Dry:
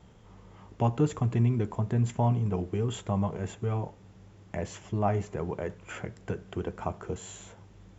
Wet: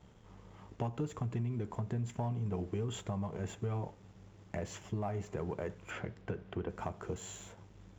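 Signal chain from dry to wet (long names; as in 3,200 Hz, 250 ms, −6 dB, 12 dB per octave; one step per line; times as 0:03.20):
downward compressor 6 to 1, threshold −30 dBFS, peak gain reduction 10.5 dB
leveller curve on the samples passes 1
0:05.90–0:06.68: low-pass filter 5,000 Hz → 3,000 Hz 12 dB per octave
level −6 dB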